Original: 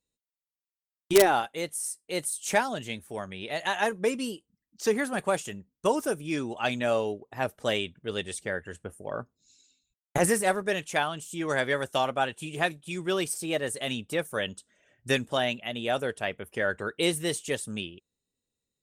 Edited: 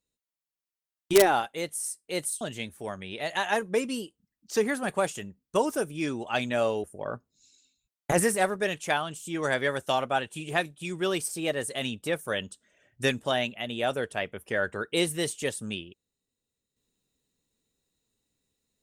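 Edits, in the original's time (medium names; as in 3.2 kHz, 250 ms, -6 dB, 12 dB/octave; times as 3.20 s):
2.41–2.71 s: delete
7.14–8.90 s: delete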